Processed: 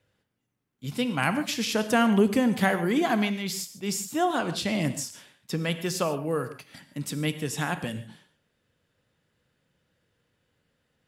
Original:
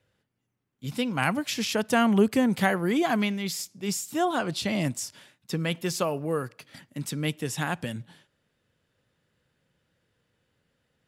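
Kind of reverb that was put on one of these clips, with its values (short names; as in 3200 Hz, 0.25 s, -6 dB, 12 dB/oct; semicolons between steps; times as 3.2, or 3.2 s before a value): non-linear reverb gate 0.17 s flat, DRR 10 dB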